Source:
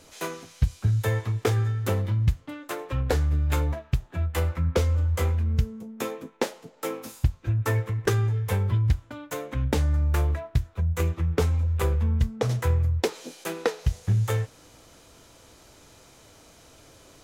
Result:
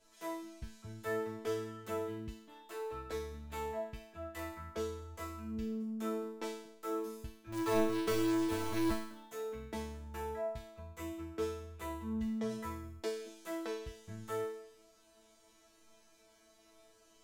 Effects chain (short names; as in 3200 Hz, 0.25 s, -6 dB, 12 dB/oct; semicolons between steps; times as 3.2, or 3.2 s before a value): 7.52–8.93 half-waves squared off; resonator bank A3 fifth, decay 0.7 s; gain +7 dB